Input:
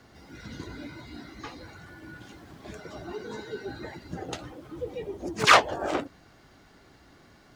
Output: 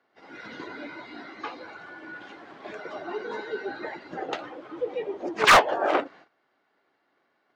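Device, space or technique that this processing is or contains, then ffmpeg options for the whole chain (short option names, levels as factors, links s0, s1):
walkie-talkie: -filter_complex "[0:a]asettb=1/sr,asplit=3[s0][s1][s2];[s0]atrim=end=1.414[s3];[s1]atrim=start=1.41:end=2.03,asetpts=PTS-STARTPTS,afade=t=in:d=0.004:c=qsin,afade=t=out:st=0.616:d=0.004:c=qsin,bandreject=f=1900:w=8.4[s4];[s2]atrim=start=2.026[s5];[s3][s4]acrossfade=d=0.004:c1=hsin:c2=qsin[s6];[s6][s5]acrossfade=d=0.004:c1=qsin:c2=hsin,highpass=430,lowpass=2700,asoftclip=type=hard:threshold=0.119,agate=range=0.112:threshold=0.00158:ratio=16:detection=peak,volume=2.37"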